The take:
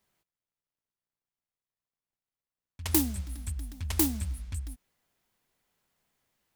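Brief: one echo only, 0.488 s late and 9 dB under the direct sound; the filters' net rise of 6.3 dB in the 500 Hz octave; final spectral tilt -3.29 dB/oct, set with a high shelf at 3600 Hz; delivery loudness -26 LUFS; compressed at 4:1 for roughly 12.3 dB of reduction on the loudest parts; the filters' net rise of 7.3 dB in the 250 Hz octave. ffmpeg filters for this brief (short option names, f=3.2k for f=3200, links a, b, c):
-af "equalizer=f=250:t=o:g=7.5,equalizer=f=500:t=o:g=4.5,highshelf=f=3.6k:g=7,acompressor=threshold=-28dB:ratio=4,aecho=1:1:488:0.355,volume=7.5dB"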